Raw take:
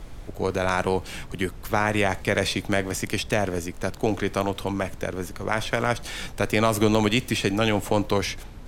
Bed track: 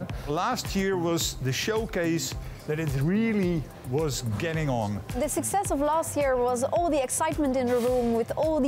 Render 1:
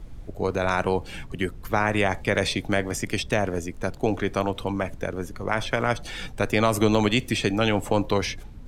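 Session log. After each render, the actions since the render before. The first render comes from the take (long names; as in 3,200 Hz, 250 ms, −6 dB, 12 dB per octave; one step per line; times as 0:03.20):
broadband denoise 9 dB, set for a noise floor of −40 dBFS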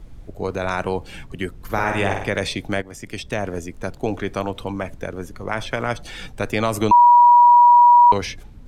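0:01.56–0:02.27: flutter between parallel walls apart 8.6 metres, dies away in 0.65 s
0:02.82–0:03.51: fade in, from −12.5 dB
0:06.91–0:08.12: beep over 964 Hz −7 dBFS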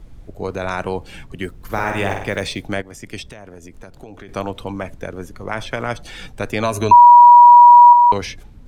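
0:01.42–0:02.64: one scale factor per block 7 bits
0:03.26–0:04.29: downward compressor, threshold −34 dBFS
0:06.63–0:07.93: EQ curve with evenly spaced ripples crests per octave 1.5, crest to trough 11 dB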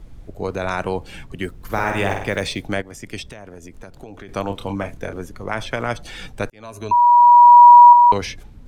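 0:04.47–0:05.20: double-tracking delay 30 ms −7 dB
0:06.50–0:07.67: fade in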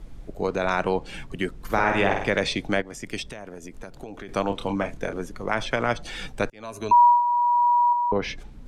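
treble cut that deepens with the level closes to 450 Hz, closed at −7.5 dBFS
parametric band 88 Hz −11 dB 0.55 octaves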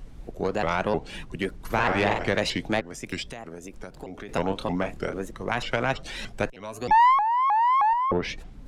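one-sided soft clipper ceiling −16 dBFS
pitch modulation by a square or saw wave saw up 3.2 Hz, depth 250 cents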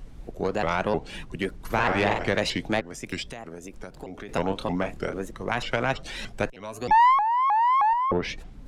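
no processing that can be heard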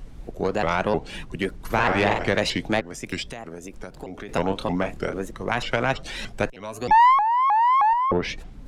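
level +2.5 dB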